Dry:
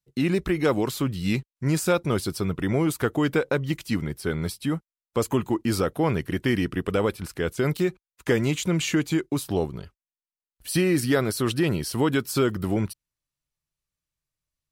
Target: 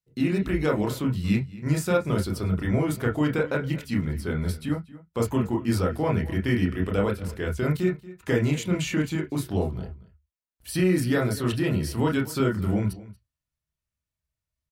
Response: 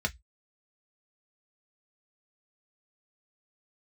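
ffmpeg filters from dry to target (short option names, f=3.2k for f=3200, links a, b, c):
-filter_complex "[0:a]asplit=2[a][b];[b]adelay=233.2,volume=-18dB,highshelf=f=4k:g=-5.25[c];[a][c]amix=inputs=2:normalize=0,asplit=2[d][e];[1:a]atrim=start_sample=2205,lowpass=2.1k,adelay=27[f];[e][f]afir=irnorm=-1:irlink=0,volume=-4.5dB[g];[d][g]amix=inputs=2:normalize=0,volume=-5dB"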